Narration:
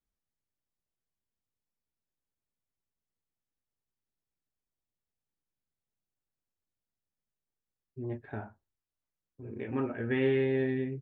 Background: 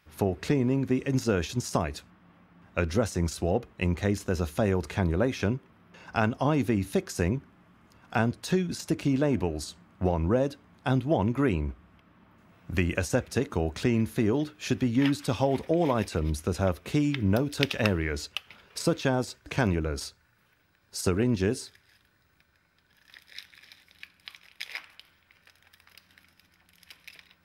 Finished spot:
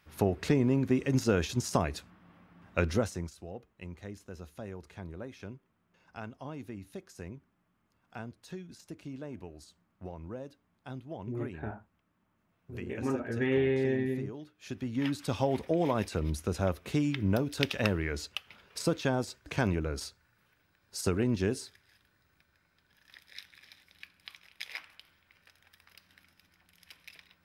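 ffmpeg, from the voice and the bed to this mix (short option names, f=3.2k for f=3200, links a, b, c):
-filter_complex "[0:a]adelay=3300,volume=0dB[a];[1:a]volume=12.5dB,afade=t=out:st=2.88:d=0.44:silence=0.158489,afade=t=in:st=14.55:d=0.85:silence=0.211349[b];[a][b]amix=inputs=2:normalize=0"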